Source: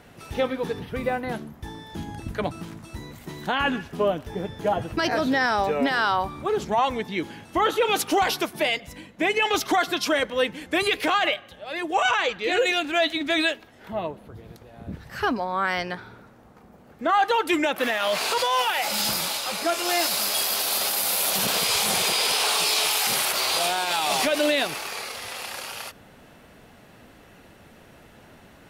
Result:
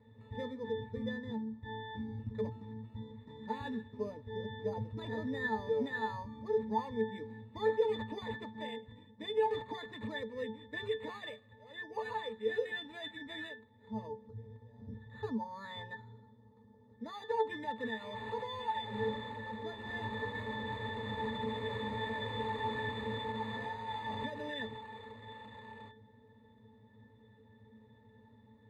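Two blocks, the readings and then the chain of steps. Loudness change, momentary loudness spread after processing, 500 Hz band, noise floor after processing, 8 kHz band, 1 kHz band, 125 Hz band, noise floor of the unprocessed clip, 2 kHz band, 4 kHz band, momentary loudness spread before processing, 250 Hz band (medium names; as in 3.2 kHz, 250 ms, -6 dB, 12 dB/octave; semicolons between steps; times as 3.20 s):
-15.5 dB, 15 LU, -11.0 dB, -62 dBFS, under -40 dB, -15.0 dB, -5.5 dB, -51 dBFS, -16.5 dB, -21.0 dB, 14 LU, -11.5 dB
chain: careless resampling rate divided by 8×, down none, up hold; pitch-class resonator A, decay 0.19 s; trim +1 dB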